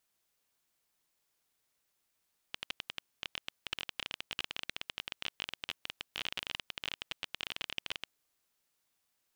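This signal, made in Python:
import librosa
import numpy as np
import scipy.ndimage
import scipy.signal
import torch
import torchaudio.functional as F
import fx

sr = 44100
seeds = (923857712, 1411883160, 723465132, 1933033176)

y = fx.geiger_clicks(sr, seeds[0], length_s=5.53, per_s=21.0, level_db=-19.0)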